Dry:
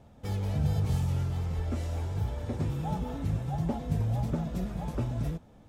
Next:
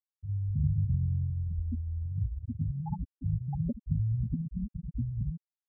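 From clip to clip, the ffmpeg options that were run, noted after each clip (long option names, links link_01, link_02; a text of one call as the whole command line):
ffmpeg -i in.wav -af "acompressor=mode=upward:threshold=-33dB:ratio=2.5,afftfilt=real='re*gte(hypot(re,im),0.178)':imag='im*gte(hypot(re,im),0.178)':win_size=1024:overlap=0.75" out.wav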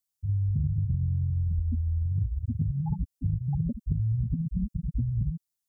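ffmpeg -i in.wav -af "bass=frequency=250:gain=9,treble=frequency=4000:gain=13,acompressor=threshold=-24dB:ratio=6" out.wav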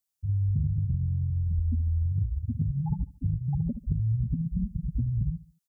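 ffmpeg -i in.wav -af "aecho=1:1:72|144|216:0.126|0.0504|0.0201" out.wav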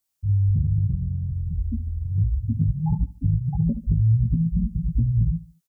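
ffmpeg -i in.wav -filter_complex "[0:a]asplit=2[link_01][link_02];[link_02]adelay=18,volume=-4.5dB[link_03];[link_01][link_03]amix=inputs=2:normalize=0,volume=4.5dB" out.wav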